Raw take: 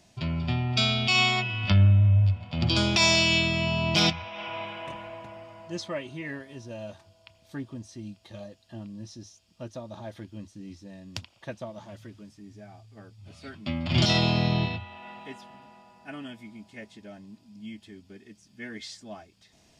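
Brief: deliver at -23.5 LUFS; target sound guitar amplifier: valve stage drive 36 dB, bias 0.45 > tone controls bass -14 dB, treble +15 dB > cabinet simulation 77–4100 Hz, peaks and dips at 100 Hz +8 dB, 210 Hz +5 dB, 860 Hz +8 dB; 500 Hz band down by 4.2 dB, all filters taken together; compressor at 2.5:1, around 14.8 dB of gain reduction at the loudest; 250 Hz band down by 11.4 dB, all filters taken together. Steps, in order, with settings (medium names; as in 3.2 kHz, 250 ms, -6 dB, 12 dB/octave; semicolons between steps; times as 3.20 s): peaking EQ 250 Hz -7.5 dB; peaking EQ 500 Hz -5.5 dB; compression 2.5:1, threshold -41 dBFS; valve stage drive 36 dB, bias 0.45; tone controls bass -14 dB, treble +15 dB; cabinet simulation 77–4100 Hz, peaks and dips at 100 Hz +8 dB, 210 Hz +5 dB, 860 Hz +8 dB; trim +19.5 dB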